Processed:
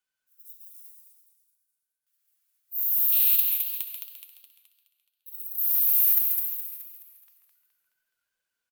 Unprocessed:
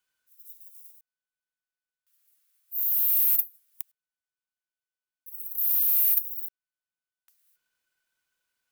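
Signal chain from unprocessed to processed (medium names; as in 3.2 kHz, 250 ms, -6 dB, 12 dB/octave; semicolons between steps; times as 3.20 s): 3.12–5.44 s: high-order bell 3.3 kHz +12.5 dB 1 oct; frequency-shifting echo 137 ms, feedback 41%, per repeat +73 Hz, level -7.5 dB; spectral noise reduction 6 dB; modulated delay 211 ms, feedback 50%, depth 110 cents, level -5 dB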